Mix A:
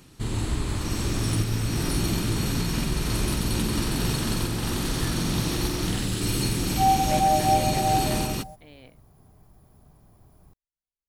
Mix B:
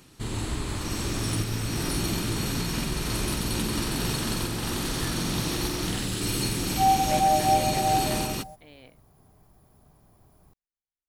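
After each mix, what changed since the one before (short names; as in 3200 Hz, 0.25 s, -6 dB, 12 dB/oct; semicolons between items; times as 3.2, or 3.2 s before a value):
master: add low shelf 230 Hz -5 dB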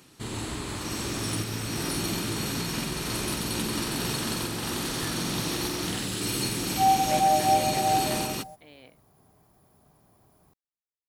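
master: add HPF 150 Hz 6 dB/oct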